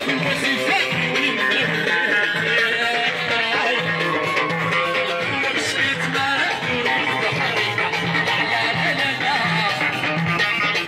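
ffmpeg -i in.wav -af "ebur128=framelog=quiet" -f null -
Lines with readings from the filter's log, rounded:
Integrated loudness:
  I:         -18.7 LUFS
  Threshold: -28.7 LUFS
Loudness range:
  LRA:         1.4 LU
  Threshold: -38.8 LUFS
  LRA low:   -19.4 LUFS
  LRA high:  -18.0 LUFS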